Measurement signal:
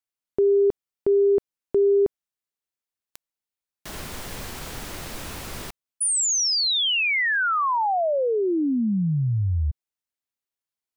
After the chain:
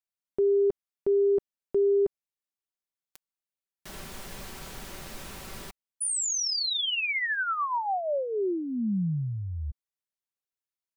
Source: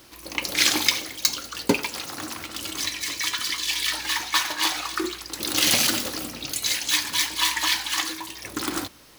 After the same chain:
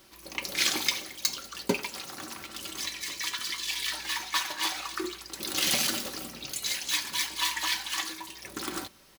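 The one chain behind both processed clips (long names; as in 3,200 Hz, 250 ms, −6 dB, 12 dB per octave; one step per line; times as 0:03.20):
comb filter 5.2 ms, depth 38%
level −7 dB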